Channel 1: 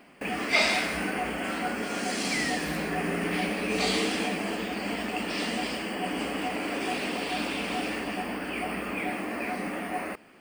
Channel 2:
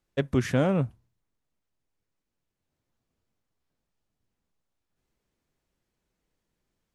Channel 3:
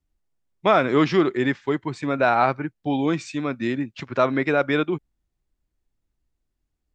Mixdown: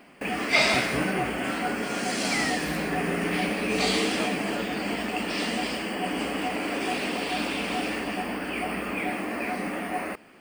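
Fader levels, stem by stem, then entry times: +2.0 dB, -10.5 dB, -17.0 dB; 0.00 s, 0.40 s, 0.00 s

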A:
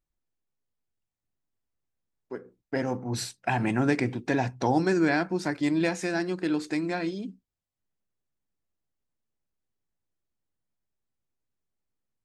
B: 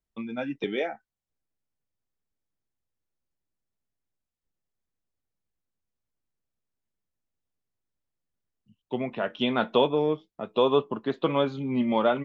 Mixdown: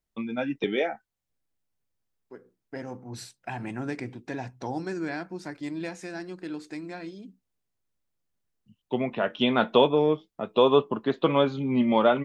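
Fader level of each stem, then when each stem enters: -8.5 dB, +2.5 dB; 0.00 s, 0.00 s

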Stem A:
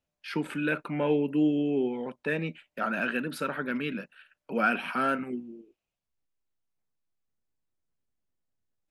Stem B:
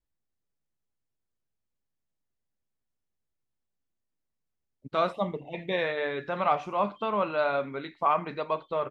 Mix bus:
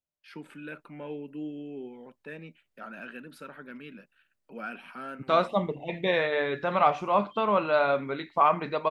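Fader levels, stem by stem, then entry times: -12.5 dB, +3.0 dB; 0.00 s, 0.35 s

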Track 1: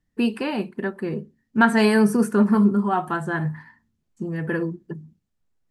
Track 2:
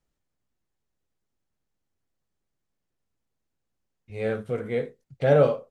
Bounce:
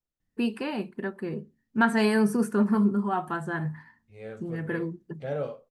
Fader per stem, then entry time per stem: -5.5 dB, -13.0 dB; 0.20 s, 0.00 s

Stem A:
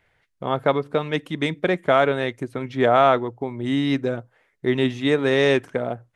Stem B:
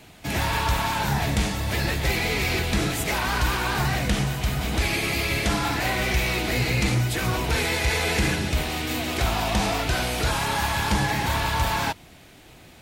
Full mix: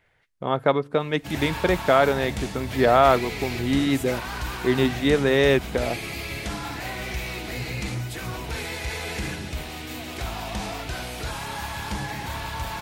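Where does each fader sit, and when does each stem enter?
-0.5 dB, -7.5 dB; 0.00 s, 1.00 s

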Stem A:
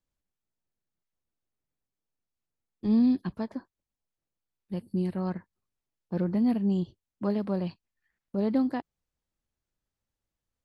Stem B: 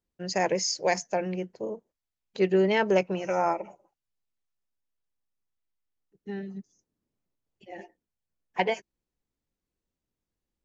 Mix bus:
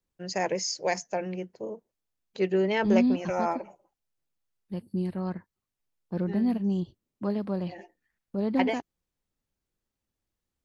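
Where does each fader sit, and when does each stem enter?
-1.0 dB, -2.5 dB; 0.00 s, 0.00 s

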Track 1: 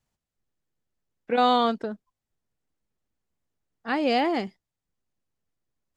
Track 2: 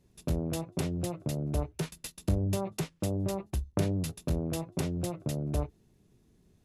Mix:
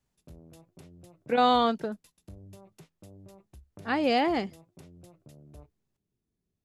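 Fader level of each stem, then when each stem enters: -1.5 dB, -19.5 dB; 0.00 s, 0.00 s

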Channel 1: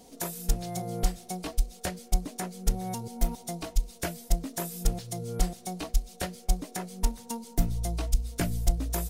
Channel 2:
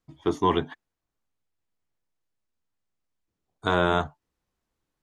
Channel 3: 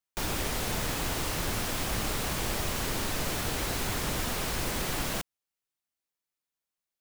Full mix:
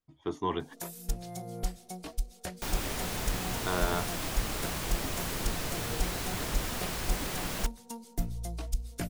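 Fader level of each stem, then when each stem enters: -6.5 dB, -9.0 dB, -3.5 dB; 0.60 s, 0.00 s, 2.45 s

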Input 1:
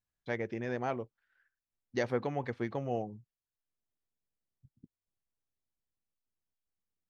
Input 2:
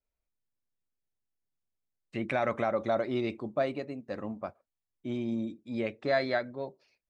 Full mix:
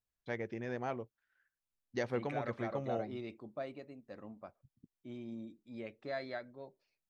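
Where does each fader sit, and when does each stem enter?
-4.0 dB, -12.5 dB; 0.00 s, 0.00 s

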